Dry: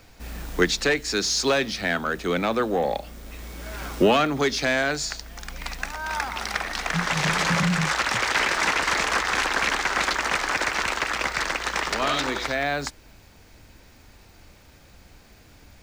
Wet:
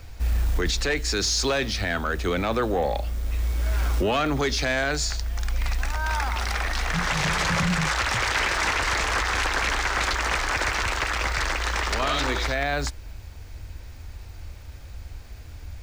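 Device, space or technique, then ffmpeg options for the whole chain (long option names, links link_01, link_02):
car stereo with a boomy subwoofer: -af "lowshelf=frequency=120:width_type=q:width=1.5:gain=11,alimiter=limit=-18.5dB:level=0:latency=1:release=11,volume=2dB"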